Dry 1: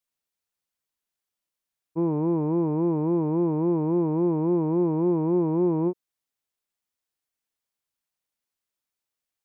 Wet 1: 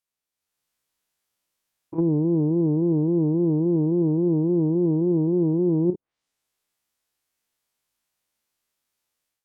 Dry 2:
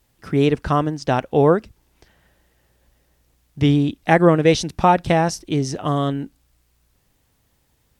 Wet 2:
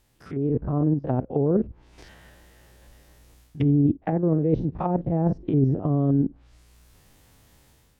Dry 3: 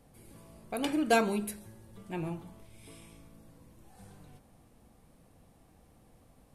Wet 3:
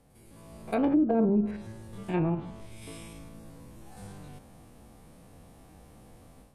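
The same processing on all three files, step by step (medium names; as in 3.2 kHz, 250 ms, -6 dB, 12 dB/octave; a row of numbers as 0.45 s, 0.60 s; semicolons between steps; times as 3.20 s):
spectrogram pixelated in time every 50 ms; reverse; compression 12:1, threshold -25 dBFS; reverse; low-pass that closes with the level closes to 400 Hz, closed at -28 dBFS; level rider gain up to 9.5 dB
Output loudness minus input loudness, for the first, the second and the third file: +2.5 LU, -5.0 LU, +4.5 LU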